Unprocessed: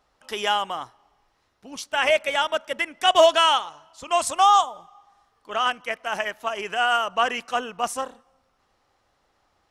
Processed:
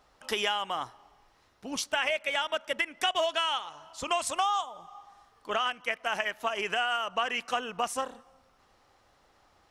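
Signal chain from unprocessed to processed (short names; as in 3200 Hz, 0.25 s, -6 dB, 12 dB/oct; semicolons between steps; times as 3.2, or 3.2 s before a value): dynamic EQ 2500 Hz, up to +5 dB, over -34 dBFS, Q 0.93; compressor 5:1, threshold -31 dBFS, peak gain reduction 18.5 dB; gain +3.5 dB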